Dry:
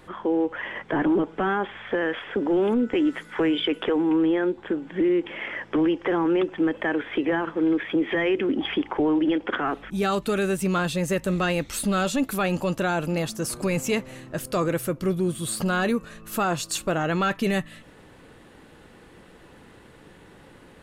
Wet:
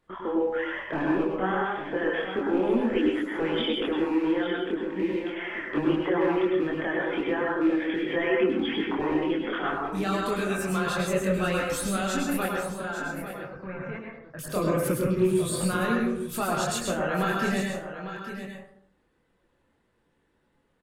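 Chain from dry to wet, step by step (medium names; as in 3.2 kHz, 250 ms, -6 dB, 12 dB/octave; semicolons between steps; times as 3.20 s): rattle on loud lows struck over -28 dBFS, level -30 dBFS; reverb removal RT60 1.1 s; gate -41 dBFS, range -19 dB; in parallel at -2.5 dB: peak limiter -22.5 dBFS, peak gain reduction 7.5 dB; 12.46–14.39 s: on the sum: four-pole ladder low-pass 2 kHz, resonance 45%; chorus voices 6, 1.4 Hz, delay 24 ms, depth 3 ms; on a send: delay 851 ms -10.5 dB; on the sum: plate-style reverb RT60 0.66 s, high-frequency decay 0.45×, pre-delay 90 ms, DRR -0.5 dB; trim -4.5 dB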